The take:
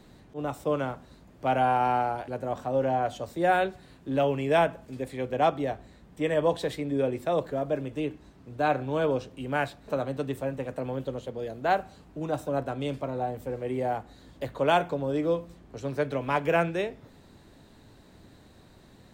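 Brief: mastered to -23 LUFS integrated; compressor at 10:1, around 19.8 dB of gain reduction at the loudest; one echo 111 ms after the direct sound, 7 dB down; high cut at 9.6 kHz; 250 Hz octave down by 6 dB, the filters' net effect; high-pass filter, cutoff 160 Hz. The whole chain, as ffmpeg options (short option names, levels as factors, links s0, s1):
-af "highpass=160,lowpass=9600,equalizer=f=250:t=o:g=-7,acompressor=threshold=0.01:ratio=10,aecho=1:1:111:0.447,volume=11.9"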